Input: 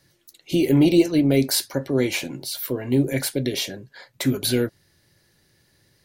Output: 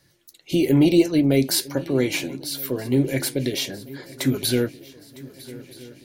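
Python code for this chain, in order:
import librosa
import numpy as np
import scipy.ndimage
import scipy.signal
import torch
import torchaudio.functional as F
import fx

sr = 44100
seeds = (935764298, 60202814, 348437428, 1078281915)

y = fx.echo_swing(x, sr, ms=1275, ratio=3, feedback_pct=54, wet_db=-20)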